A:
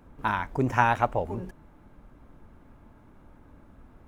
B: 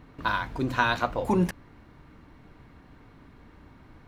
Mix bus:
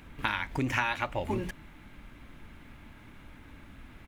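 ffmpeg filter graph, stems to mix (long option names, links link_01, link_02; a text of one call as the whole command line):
ffmpeg -i stem1.wav -i stem2.wav -filter_complex "[0:a]firequalizer=gain_entry='entry(300,0);entry(440,-5);entry(1200,1);entry(2100,14);entry(3400,14);entry(5400,8)':delay=0.05:min_phase=1,acompressor=threshold=-29dB:ratio=6,volume=2dB[link_01];[1:a]volume=-11.5dB[link_02];[link_01][link_02]amix=inputs=2:normalize=0" out.wav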